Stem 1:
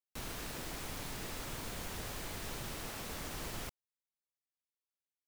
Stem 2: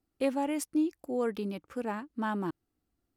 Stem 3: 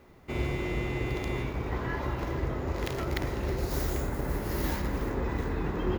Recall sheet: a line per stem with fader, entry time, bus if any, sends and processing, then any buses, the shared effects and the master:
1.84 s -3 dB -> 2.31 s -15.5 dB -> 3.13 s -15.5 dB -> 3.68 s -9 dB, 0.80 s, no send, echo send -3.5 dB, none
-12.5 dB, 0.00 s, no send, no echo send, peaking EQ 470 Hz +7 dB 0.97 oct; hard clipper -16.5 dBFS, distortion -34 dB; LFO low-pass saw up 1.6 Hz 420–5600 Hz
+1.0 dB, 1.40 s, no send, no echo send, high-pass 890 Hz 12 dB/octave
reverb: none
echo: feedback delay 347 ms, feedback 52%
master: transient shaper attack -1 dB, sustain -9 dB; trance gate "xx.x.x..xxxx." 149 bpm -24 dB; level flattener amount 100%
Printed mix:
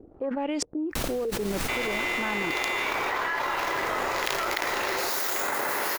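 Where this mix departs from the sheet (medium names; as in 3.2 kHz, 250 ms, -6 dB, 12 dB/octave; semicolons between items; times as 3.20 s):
stem 1 -3.0 dB -> -11.0 dB; master: missing trance gate "xx.x.x..xxxx." 149 bpm -24 dB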